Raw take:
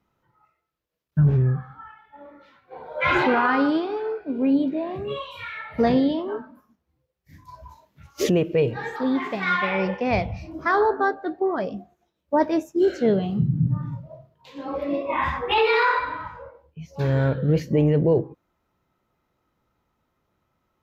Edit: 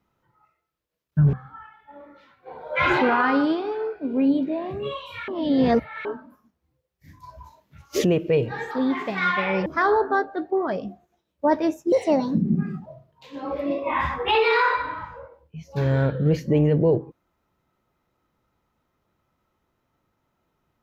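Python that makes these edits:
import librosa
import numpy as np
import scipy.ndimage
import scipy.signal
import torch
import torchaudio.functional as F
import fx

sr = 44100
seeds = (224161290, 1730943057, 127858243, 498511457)

y = fx.edit(x, sr, fx.cut(start_s=1.33, length_s=0.25),
    fx.reverse_span(start_s=5.53, length_s=0.77),
    fx.cut(start_s=9.91, length_s=0.64),
    fx.speed_span(start_s=12.81, length_s=1.28, speed=1.36), tone=tone)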